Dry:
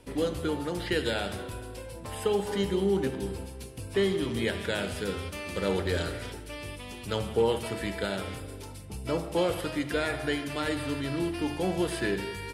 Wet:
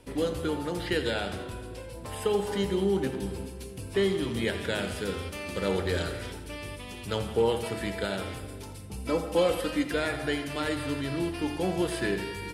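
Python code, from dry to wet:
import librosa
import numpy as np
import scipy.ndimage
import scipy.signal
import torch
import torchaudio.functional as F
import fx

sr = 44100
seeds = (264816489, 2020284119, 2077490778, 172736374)

y = fx.high_shelf(x, sr, hz=9300.0, db=-7.0, at=(0.97, 1.93))
y = fx.comb(y, sr, ms=3.9, depth=0.65, at=(8.97, 9.91))
y = fx.echo_split(y, sr, split_hz=340.0, low_ms=400, high_ms=85, feedback_pct=52, wet_db=-15.0)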